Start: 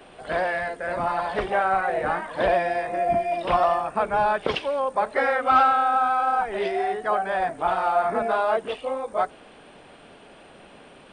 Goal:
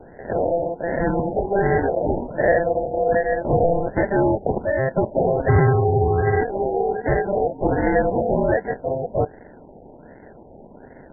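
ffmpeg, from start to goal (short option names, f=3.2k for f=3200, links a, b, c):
-filter_complex "[0:a]asplit=2[a][b];[b]asoftclip=type=hard:threshold=-20dB,volume=-3dB[c];[a][c]amix=inputs=2:normalize=0,acrusher=samples=37:mix=1:aa=0.000001,afftfilt=real='re*lt(b*sr/1024,900*pow(2200/900,0.5+0.5*sin(2*PI*1.3*pts/sr)))':imag='im*lt(b*sr/1024,900*pow(2200/900,0.5+0.5*sin(2*PI*1.3*pts/sr)))':win_size=1024:overlap=0.75"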